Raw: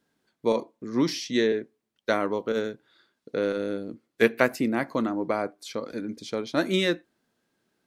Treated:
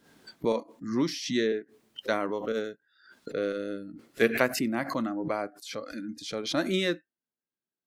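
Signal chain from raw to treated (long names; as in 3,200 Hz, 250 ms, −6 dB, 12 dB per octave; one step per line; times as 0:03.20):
noise reduction from a noise print of the clip's start 21 dB
background raised ahead of every attack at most 89 dB per second
level −3.5 dB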